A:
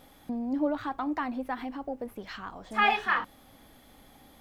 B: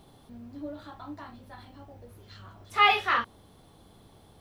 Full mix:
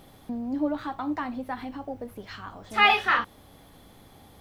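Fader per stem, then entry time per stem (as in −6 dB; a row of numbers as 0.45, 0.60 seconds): −0.5, +1.0 decibels; 0.00, 0.00 seconds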